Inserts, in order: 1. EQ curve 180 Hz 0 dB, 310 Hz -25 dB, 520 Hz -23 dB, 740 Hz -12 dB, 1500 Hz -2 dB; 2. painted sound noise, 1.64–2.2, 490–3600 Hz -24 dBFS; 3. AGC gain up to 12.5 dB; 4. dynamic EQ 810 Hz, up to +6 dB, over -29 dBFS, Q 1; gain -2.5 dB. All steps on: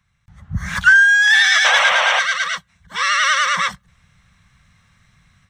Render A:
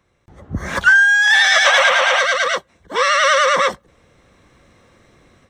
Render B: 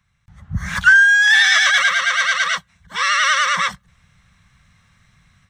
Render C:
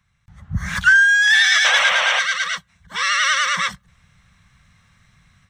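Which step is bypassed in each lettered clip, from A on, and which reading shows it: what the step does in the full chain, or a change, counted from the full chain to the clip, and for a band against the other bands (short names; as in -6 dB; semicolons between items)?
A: 1, 500 Hz band +11.0 dB; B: 2, 500 Hz band -7.0 dB; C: 4, 500 Hz band -3.0 dB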